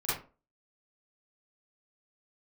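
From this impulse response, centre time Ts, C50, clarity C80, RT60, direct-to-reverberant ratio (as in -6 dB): 55 ms, 0.0 dB, 9.0 dB, 0.35 s, -12.5 dB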